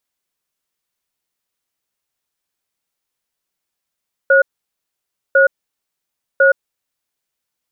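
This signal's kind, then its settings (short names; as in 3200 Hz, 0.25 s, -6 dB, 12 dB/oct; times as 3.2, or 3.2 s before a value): cadence 545 Hz, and 1450 Hz, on 0.12 s, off 0.93 s, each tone -10 dBFS 2.64 s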